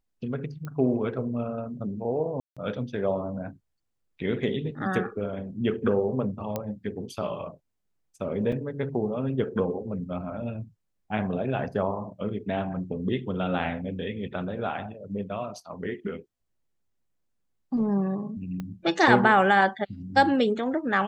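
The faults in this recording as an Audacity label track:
0.650000	0.650000	pop -24 dBFS
2.400000	2.570000	dropout 166 ms
6.560000	6.560000	pop -15 dBFS
8.520000	8.520000	dropout 4 ms
18.600000	18.600000	pop -22 dBFS

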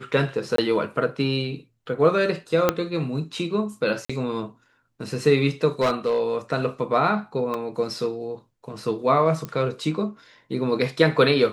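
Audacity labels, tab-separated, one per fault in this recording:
0.560000	0.580000	dropout 23 ms
2.690000	2.690000	pop -4 dBFS
4.050000	4.090000	dropout 45 ms
5.810000	6.200000	clipped -16.5 dBFS
7.540000	7.540000	dropout 3.4 ms
9.450000	9.450000	pop -17 dBFS

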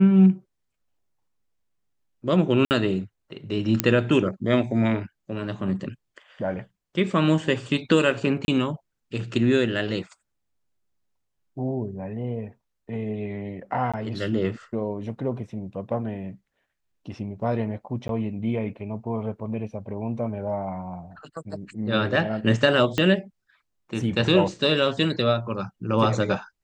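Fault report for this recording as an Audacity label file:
2.650000	2.710000	dropout 59 ms
3.800000	3.800000	pop -2 dBFS
8.450000	8.480000	dropout 31 ms
13.920000	13.940000	dropout 16 ms
18.080000	18.090000	dropout 12 ms
22.980000	22.980000	pop -10 dBFS

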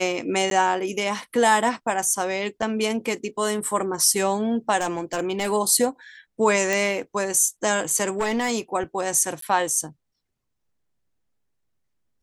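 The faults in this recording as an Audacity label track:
0.500000	0.510000	dropout
2.620000	2.620000	dropout 3.6 ms
4.770000	5.520000	clipped -19 dBFS
6.730000	6.730000	pop
8.090000	8.520000	clipped -19 dBFS
9.410000	9.420000	dropout 13 ms

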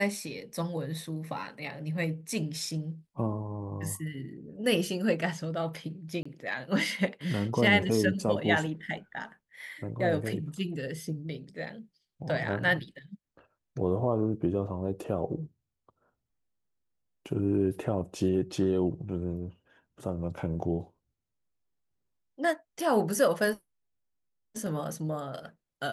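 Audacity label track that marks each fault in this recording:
6.230000	6.250000	dropout 25 ms

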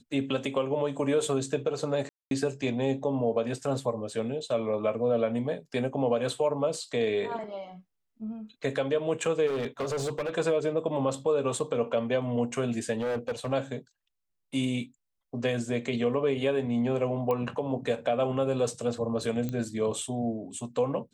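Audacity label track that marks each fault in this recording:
2.090000	2.310000	dropout 222 ms
9.460000	10.350000	clipped -27 dBFS
12.970000	13.530000	clipped -26.5 dBFS
17.310000	17.310000	pop -18 dBFS
19.490000	19.490000	pop -20 dBFS

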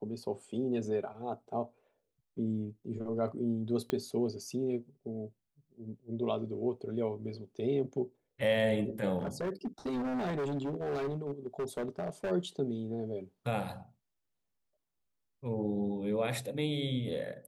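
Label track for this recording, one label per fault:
3.900000	3.900000	pop -18 dBFS
9.180000	12.320000	clipped -31 dBFS

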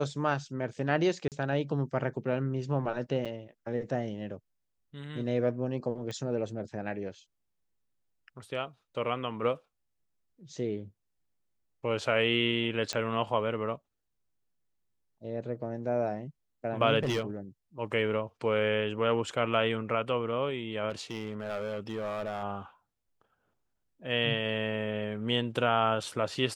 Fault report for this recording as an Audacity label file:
1.280000	1.320000	dropout 38 ms
3.250000	3.260000	dropout 6.4 ms
6.110000	6.110000	pop -25 dBFS
12.930000	12.930000	pop -17 dBFS
16.990000	17.230000	clipped -25 dBFS
20.900000	22.440000	clipped -30 dBFS

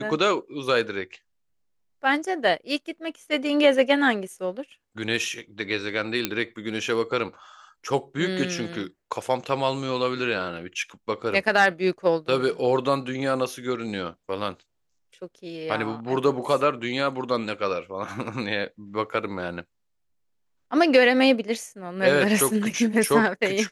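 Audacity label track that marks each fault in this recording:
6.250000	6.250000	pop -6 dBFS

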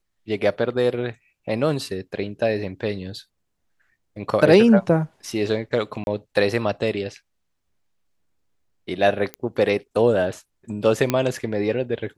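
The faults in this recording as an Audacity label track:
6.040000	6.070000	dropout 31 ms
9.340000	9.340000	pop -15 dBFS
11.100000	11.100000	pop -6 dBFS

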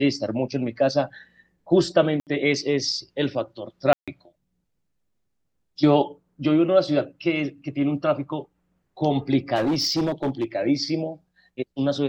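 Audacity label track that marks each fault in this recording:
2.200000	2.270000	dropout 68 ms
3.930000	4.080000	dropout 146 ms
9.550000	10.450000	clipped -19 dBFS

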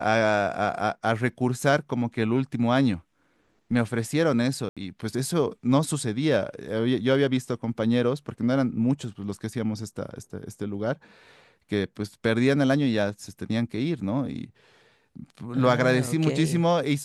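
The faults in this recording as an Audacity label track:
4.690000	4.770000	dropout 76 ms

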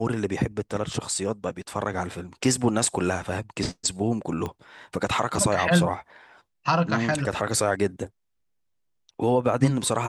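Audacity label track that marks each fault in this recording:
4.460000	4.460000	pop -18 dBFS

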